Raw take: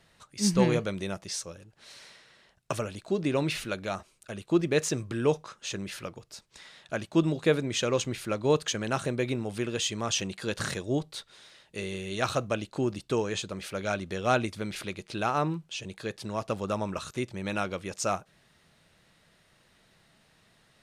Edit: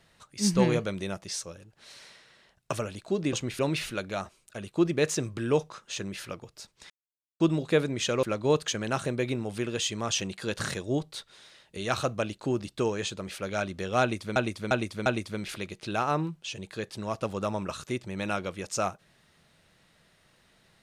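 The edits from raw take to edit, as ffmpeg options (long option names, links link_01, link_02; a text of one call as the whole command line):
ffmpeg -i in.wav -filter_complex "[0:a]asplit=10[link_01][link_02][link_03][link_04][link_05][link_06][link_07][link_08][link_09][link_10];[link_01]atrim=end=3.332[link_11];[link_02]atrim=start=7.968:end=8.232[link_12];[link_03]atrim=start=3.328:end=6.64,asetpts=PTS-STARTPTS,afade=type=out:start_time=3.308:duration=0.004:curve=hsin[link_13];[link_04]atrim=start=6.64:end=7.14,asetpts=PTS-STARTPTS,volume=0[link_14];[link_05]atrim=start=7.14:end=7.972,asetpts=PTS-STARTPTS,afade=type=in:duration=0.004:curve=hsin[link_15];[link_06]atrim=start=8.228:end=11.772[link_16];[link_07]atrim=start=12.088:end=14.682[link_17];[link_08]atrim=start=14.328:end=14.682[link_18];[link_09]atrim=start=14.328:end=14.682[link_19];[link_10]atrim=start=14.328[link_20];[link_11][link_12]acrossfade=duration=0.004:curve1=hsin:curve2=hsin[link_21];[link_13][link_14][link_15]concat=n=3:v=0:a=1[link_22];[link_21][link_22]acrossfade=duration=0.004:curve1=hsin:curve2=hsin[link_23];[link_23][link_16]acrossfade=duration=0.004:curve1=hsin:curve2=hsin[link_24];[link_24][link_17]acrossfade=duration=0.004:curve1=hsin:curve2=hsin[link_25];[link_25][link_18]acrossfade=duration=0.004:curve1=hsin:curve2=hsin[link_26];[link_26][link_19]acrossfade=duration=0.004:curve1=hsin:curve2=hsin[link_27];[link_27][link_20]acrossfade=duration=0.004:curve1=hsin:curve2=hsin" out.wav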